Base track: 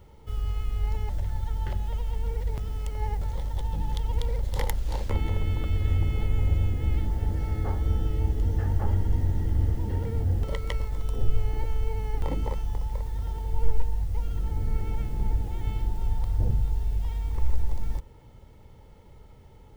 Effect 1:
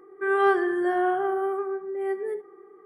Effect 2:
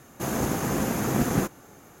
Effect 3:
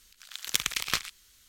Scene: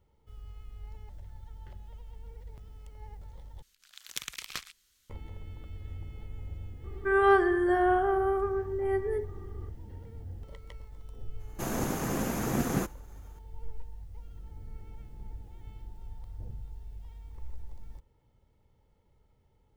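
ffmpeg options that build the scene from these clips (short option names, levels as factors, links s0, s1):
-filter_complex "[0:a]volume=0.141[s0];[2:a]agate=range=0.0224:threshold=0.00501:ratio=3:release=100:detection=peak[s1];[s0]asplit=2[s2][s3];[s2]atrim=end=3.624[s4];[3:a]atrim=end=1.48,asetpts=PTS-STARTPTS,volume=0.316[s5];[s3]atrim=start=5.096[s6];[1:a]atrim=end=2.85,asetpts=PTS-STARTPTS,volume=0.891,afade=t=in:d=0.004:c=hsin,afade=t=out:st=2.846:d=0.004:c=hsin,adelay=6840[s7];[s1]atrim=end=2,asetpts=PTS-STARTPTS,volume=0.562,afade=t=in:d=0.004:c=hsin,afade=t=out:st=1.996:d=0.004:c=hsin,adelay=11390[s8];[s4][s5]acrossfade=d=0.004:c1=hsin:c2=hsin[s9];[s9][s6]acrossfade=d=0.004:c1=hsin:c2=hsin[s10];[s10][s7][s8]amix=inputs=3:normalize=0"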